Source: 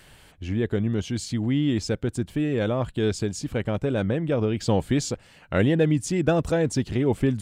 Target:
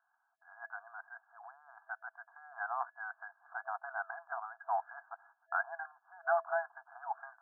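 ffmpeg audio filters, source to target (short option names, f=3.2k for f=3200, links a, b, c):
-af "agate=range=-18dB:threshold=-46dB:ratio=16:detection=peak,afftfilt=real='re*between(b*sr/4096,660,1700)':imag='im*between(b*sr/4096,660,1700)':win_size=4096:overlap=0.75,volume=-1dB"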